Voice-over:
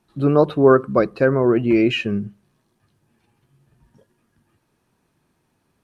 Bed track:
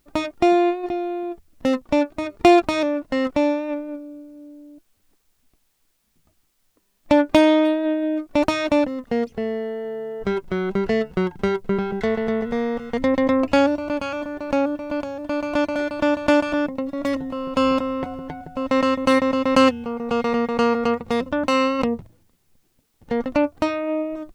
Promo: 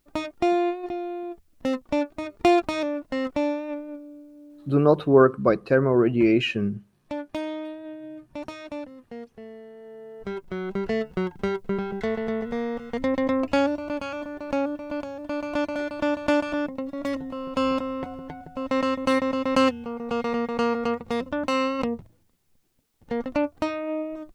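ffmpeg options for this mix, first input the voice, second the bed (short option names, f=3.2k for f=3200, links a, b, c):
-filter_complex "[0:a]adelay=4500,volume=-3dB[a];[1:a]volume=6dB,afade=t=out:st=4.97:d=0.2:silence=0.281838,afade=t=in:st=9.73:d=1.24:silence=0.266073[b];[a][b]amix=inputs=2:normalize=0"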